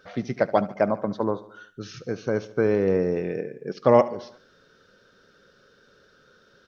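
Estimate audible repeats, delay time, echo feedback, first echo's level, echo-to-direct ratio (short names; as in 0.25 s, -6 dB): 4, 72 ms, 55%, -17.5 dB, -16.0 dB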